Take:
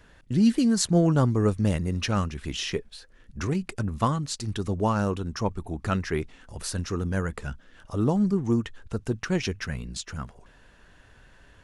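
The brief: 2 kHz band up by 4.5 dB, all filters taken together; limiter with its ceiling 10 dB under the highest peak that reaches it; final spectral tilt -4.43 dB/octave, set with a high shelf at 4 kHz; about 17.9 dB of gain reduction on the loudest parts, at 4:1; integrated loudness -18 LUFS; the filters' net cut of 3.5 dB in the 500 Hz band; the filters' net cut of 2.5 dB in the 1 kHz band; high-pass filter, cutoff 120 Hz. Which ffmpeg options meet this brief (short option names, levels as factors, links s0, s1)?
-af "highpass=120,equalizer=f=500:t=o:g=-4,equalizer=f=1000:t=o:g=-4.5,equalizer=f=2000:t=o:g=6,highshelf=f=4000:g=7,acompressor=threshold=0.01:ratio=4,volume=20,alimiter=limit=0.447:level=0:latency=1"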